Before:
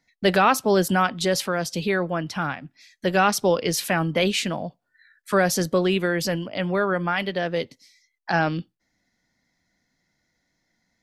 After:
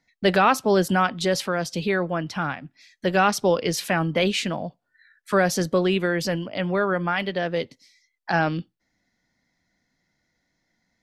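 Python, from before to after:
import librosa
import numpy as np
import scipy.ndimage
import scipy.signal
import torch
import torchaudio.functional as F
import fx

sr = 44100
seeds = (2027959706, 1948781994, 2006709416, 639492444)

y = fx.high_shelf(x, sr, hz=9000.0, db=-8.5)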